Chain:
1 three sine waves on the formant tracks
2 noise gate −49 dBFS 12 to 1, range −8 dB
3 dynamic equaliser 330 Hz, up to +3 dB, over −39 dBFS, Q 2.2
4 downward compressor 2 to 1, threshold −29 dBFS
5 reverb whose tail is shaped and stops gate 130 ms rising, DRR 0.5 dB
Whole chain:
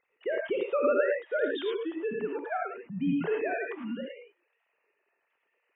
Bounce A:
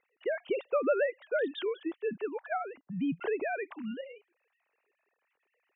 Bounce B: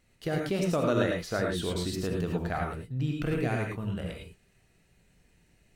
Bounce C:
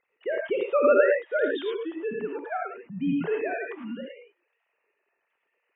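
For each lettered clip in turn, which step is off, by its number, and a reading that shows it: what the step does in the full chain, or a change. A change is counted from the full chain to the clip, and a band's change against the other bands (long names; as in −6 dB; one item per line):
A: 5, 125 Hz band −2.0 dB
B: 1, 125 Hz band +15.0 dB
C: 4, change in momentary loudness spread +5 LU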